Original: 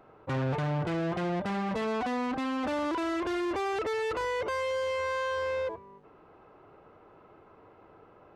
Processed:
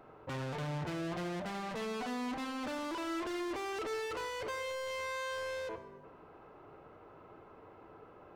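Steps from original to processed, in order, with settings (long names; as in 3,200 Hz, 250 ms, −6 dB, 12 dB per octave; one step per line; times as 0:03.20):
soft clipping −38 dBFS, distortion −13 dB
dense smooth reverb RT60 1.4 s, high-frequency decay 0.5×, DRR 10 dB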